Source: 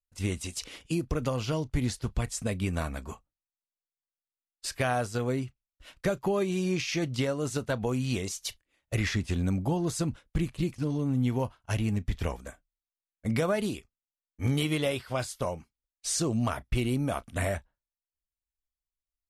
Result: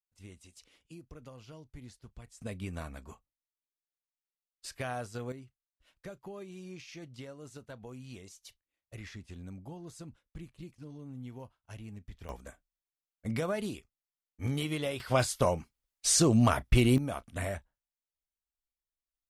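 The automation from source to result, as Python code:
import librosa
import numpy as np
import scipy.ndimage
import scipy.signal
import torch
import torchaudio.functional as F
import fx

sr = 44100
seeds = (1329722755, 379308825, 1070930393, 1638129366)

y = fx.gain(x, sr, db=fx.steps((0.0, -20.0), (2.41, -9.0), (5.32, -17.0), (12.29, -5.5), (15.0, 4.5), (16.98, -5.5)))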